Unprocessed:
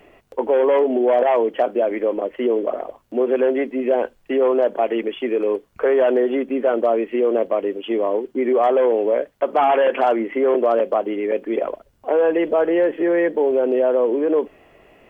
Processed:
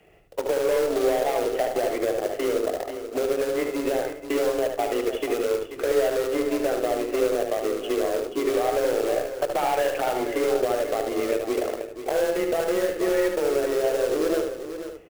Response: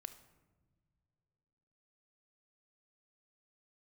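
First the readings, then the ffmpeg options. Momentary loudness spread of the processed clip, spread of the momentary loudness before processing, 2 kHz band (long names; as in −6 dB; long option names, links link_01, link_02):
5 LU, 7 LU, −2.5 dB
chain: -filter_complex "[0:a]afreqshift=24,equalizer=frequency=160:width_type=o:width=0.33:gain=8,equalizer=frequency=250:width_type=o:width=0.33:gain=-5,equalizer=frequency=1000:width_type=o:width=0.33:gain=-8,acompressor=threshold=-22dB:ratio=5,acrusher=bits=4:mode=log:mix=0:aa=0.000001,bandreject=frequency=68.2:width_type=h:width=4,bandreject=frequency=136.4:width_type=h:width=4,bandreject=frequency=204.6:width_type=h:width=4,bandreject=frequency=272.8:width_type=h:width=4,bandreject=frequency=341:width_type=h:width=4,bandreject=frequency=409.2:width_type=h:width=4,bandreject=frequency=477.4:width_type=h:width=4,bandreject=frequency=545.6:width_type=h:width=4,bandreject=frequency=613.8:width_type=h:width=4,bandreject=frequency=682:width_type=h:width=4,bandreject=frequency=750.2:width_type=h:width=4,bandreject=frequency=818.4:width_type=h:width=4,bandreject=frequency=886.6:width_type=h:width=4,bandreject=frequency=954.8:width_type=h:width=4,bandreject=frequency=1023:width_type=h:width=4,bandreject=frequency=1091.2:width_type=h:width=4,bandreject=frequency=1159.4:width_type=h:width=4,bandreject=frequency=1227.6:width_type=h:width=4,bandreject=frequency=1295.8:width_type=h:width=4,bandreject=frequency=1364:width_type=h:width=4,bandreject=frequency=1432.2:width_type=h:width=4,bandreject=frequency=1500.4:width_type=h:width=4,bandreject=frequency=1568.6:width_type=h:width=4,bandreject=frequency=1636.8:width_type=h:width=4,bandreject=frequency=1705:width_type=h:width=4,bandreject=frequency=1773.2:width_type=h:width=4,bandreject=frequency=1841.4:width_type=h:width=4,bandreject=frequency=1909.6:width_type=h:width=4,bandreject=frequency=1977.8:width_type=h:width=4,aeval=exprs='0.2*(cos(1*acos(clip(val(0)/0.2,-1,1)))-cos(1*PI/2))+0.0112*(cos(2*acos(clip(val(0)/0.2,-1,1)))-cos(2*PI/2))+0.0158*(cos(7*acos(clip(val(0)/0.2,-1,1)))-cos(7*PI/2))+0.00141*(cos(8*acos(clip(val(0)/0.2,-1,1)))-cos(8*PI/2))':channel_layout=same,aecho=1:1:485:0.299,asplit=2[link_01][link_02];[1:a]atrim=start_sample=2205,lowshelf=frequency=200:gain=9,adelay=74[link_03];[link_02][link_03]afir=irnorm=-1:irlink=0,volume=-1dB[link_04];[link_01][link_04]amix=inputs=2:normalize=0"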